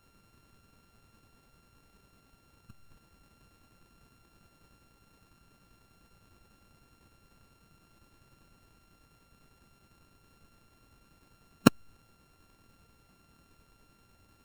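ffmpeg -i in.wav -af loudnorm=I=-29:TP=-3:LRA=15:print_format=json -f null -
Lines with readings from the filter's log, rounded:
"input_i" : "-27.0",
"input_tp" : "-1.8",
"input_lra" : "0.0",
"input_thresh" : "-50.2",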